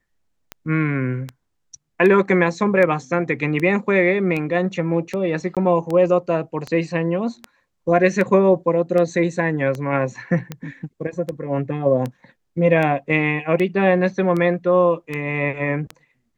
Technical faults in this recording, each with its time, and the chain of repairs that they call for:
tick 78 rpm -14 dBFS
5.55–5.57 gap 17 ms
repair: de-click; interpolate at 5.55, 17 ms

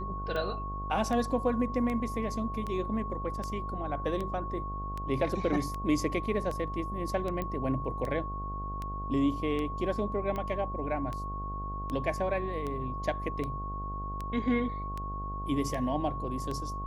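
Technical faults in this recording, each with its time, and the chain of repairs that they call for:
buzz 50 Hz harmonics 16 -38 dBFS
tick 78 rpm -23 dBFS
tone 1100 Hz -37 dBFS
7.42 pop -21 dBFS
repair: de-click; de-hum 50 Hz, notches 16; notch 1100 Hz, Q 30

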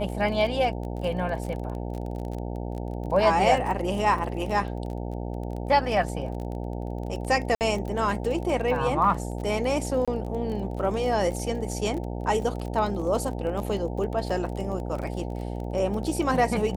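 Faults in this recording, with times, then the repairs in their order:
buzz 60 Hz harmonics 15 -32 dBFS
crackle 29/s -32 dBFS
7.55–7.61 gap 58 ms
10.05–10.08 gap 26 ms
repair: de-click; de-hum 60 Hz, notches 15; interpolate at 7.55, 58 ms; interpolate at 10.05, 26 ms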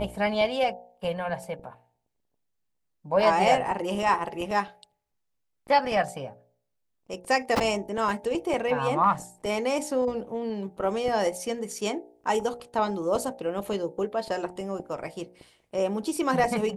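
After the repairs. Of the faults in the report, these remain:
none

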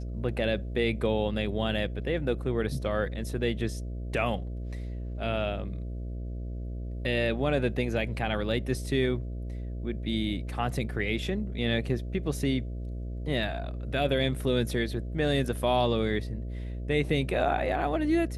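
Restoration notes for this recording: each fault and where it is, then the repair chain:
buzz 60 Hz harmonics 11 -35 dBFS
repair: de-hum 60 Hz, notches 11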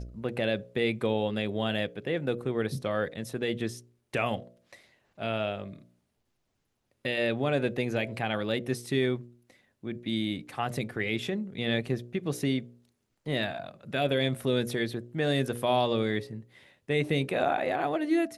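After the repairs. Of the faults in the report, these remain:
none

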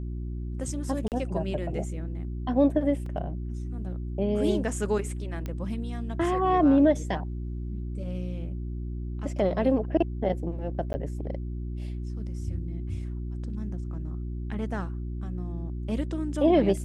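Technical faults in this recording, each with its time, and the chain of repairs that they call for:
hum 60 Hz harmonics 6 -33 dBFS
1.08–1.12 gap 38 ms
3.06 gap 3.2 ms
5.46 pop -21 dBFS
10.93–10.94 gap 10 ms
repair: de-click; de-hum 60 Hz, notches 6; interpolate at 1.08, 38 ms; interpolate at 3.06, 3.2 ms; interpolate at 10.93, 10 ms

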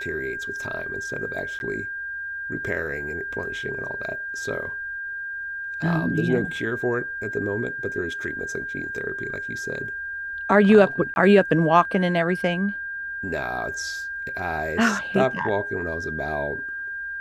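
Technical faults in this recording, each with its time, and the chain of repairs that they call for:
tone 1600 Hz -29 dBFS
1.59–1.6 gap 11 ms
11.14–11.16 gap 21 ms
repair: notch 1600 Hz, Q 30; interpolate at 1.59, 11 ms; interpolate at 11.14, 21 ms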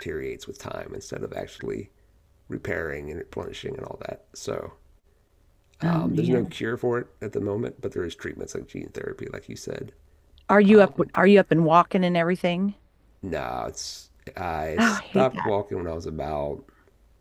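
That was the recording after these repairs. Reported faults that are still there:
none

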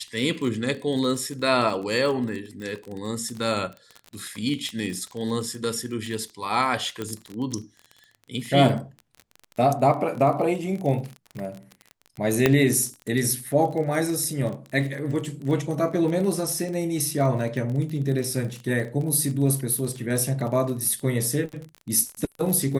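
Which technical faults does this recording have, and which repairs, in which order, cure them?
crackle 31/s -30 dBFS
4.69 pop -21 dBFS
7.02 pop -16 dBFS
12.46 pop -4 dBFS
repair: de-click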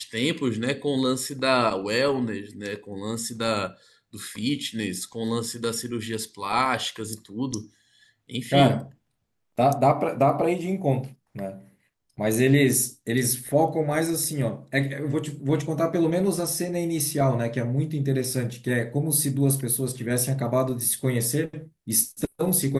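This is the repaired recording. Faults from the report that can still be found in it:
none

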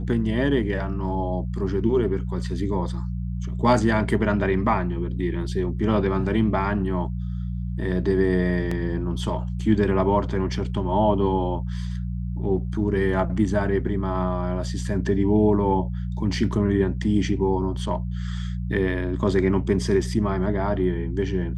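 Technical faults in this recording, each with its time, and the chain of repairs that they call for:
hum 60 Hz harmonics 3 -28 dBFS
8.71 gap 4.2 ms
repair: de-hum 60 Hz, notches 3; interpolate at 8.71, 4.2 ms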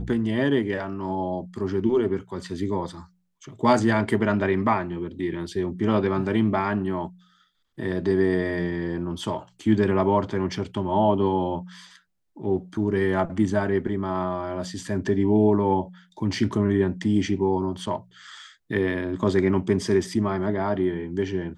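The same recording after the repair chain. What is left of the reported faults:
none

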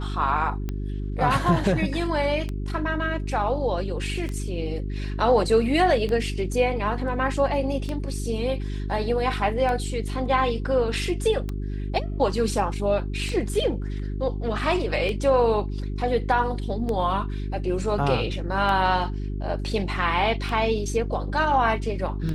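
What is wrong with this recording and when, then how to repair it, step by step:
hum 50 Hz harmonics 8 -29 dBFS
tick 33 1/3 rpm -17 dBFS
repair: de-click; de-hum 50 Hz, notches 8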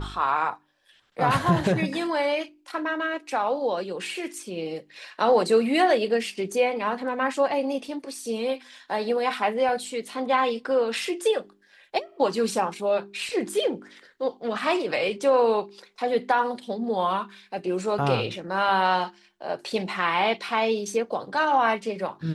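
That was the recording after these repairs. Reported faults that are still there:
none

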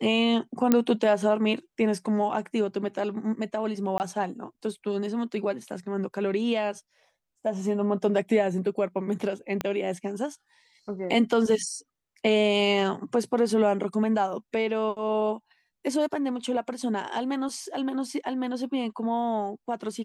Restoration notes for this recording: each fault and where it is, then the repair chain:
0.72 pop -7 dBFS
3.98–4 gap 19 ms
9.61 pop -14 dBFS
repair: de-click; interpolate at 3.98, 19 ms

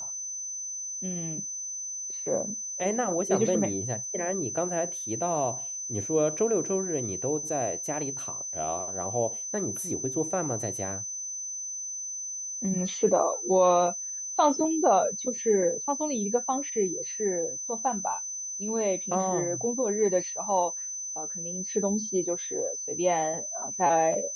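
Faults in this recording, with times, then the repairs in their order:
tone 6100 Hz -33 dBFS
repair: notch 6100 Hz, Q 30

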